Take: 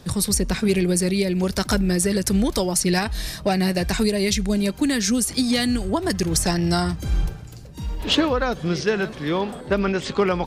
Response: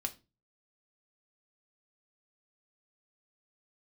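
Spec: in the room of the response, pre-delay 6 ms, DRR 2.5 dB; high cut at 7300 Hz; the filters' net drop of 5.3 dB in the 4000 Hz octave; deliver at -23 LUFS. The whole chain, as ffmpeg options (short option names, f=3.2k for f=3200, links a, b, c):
-filter_complex "[0:a]lowpass=7.3k,equalizer=f=4k:t=o:g=-6.5,asplit=2[a][b];[1:a]atrim=start_sample=2205,adelay=6[c];[b][c]afir=irnorm=-1:irlink=0,volume=-3dB[d];[a][d]amix=inputs=2:normalize=0,volume=-2.5dB"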